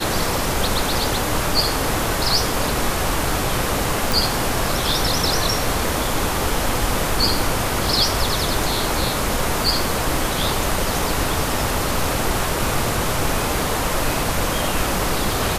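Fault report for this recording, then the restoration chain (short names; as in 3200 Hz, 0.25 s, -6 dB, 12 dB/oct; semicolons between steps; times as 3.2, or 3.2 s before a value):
4.12 pop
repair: de-click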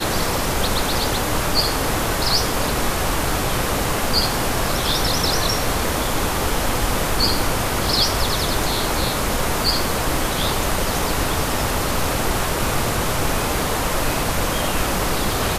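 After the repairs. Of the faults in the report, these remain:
none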